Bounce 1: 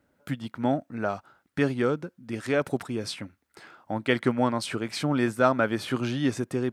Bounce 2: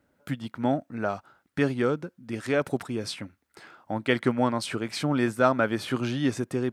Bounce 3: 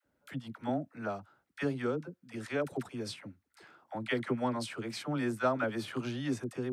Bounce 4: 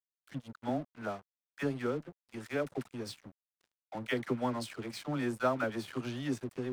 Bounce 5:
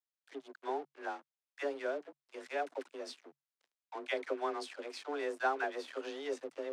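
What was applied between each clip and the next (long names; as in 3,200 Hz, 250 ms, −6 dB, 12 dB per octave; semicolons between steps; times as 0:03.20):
no processing that can be heard
all-pass dispersion lows, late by 55 ms, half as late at 550 Hz; level −8 dB
dead-zone distortion −49 dBFS
frequency shifter +140 Hz; band-pass filter 350–7,600 Hz; level −2 dB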